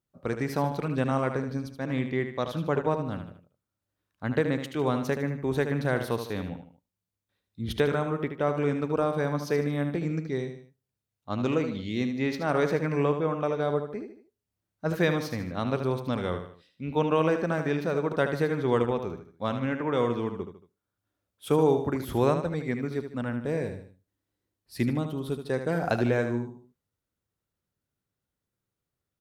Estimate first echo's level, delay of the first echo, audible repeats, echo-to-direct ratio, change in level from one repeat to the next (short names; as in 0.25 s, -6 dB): -8.5 dB, 76 ms, 3, -7.5 dB, -7.5 dB